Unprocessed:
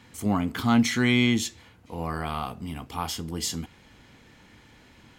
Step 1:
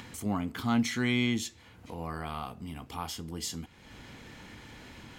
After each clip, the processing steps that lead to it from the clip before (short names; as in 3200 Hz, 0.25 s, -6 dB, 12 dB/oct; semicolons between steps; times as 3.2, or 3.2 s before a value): upward compressor, threshold -30 dBFS; gain -6.5 dB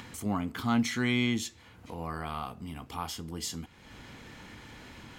bell 1200 Hz +2 dB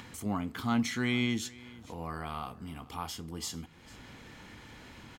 echo 0.448 s -21 dB; gain -2 dB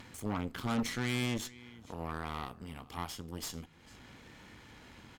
vibrato 0.97 Hz 25 cents; added harmonics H 8 -16 dB, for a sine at -17.5 dBFS; gain -4 dB